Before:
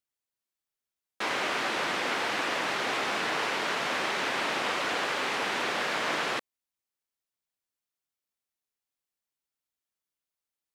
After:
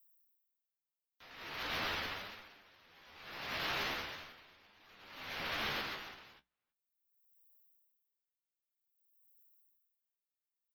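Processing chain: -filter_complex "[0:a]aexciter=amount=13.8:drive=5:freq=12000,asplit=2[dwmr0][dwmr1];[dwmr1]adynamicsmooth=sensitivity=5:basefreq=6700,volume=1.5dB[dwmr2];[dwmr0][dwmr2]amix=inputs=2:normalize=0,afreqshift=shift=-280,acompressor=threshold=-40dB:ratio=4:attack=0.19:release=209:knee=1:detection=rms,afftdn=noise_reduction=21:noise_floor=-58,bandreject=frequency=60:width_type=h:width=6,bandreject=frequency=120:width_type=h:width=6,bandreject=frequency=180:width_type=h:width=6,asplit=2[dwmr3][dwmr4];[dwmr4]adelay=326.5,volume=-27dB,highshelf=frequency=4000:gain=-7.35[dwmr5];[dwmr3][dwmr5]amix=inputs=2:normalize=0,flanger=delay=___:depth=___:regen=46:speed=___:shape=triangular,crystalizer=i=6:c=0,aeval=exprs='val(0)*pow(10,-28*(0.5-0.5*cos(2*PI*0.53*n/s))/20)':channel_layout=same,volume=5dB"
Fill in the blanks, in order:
9.2, 6.9, 0.41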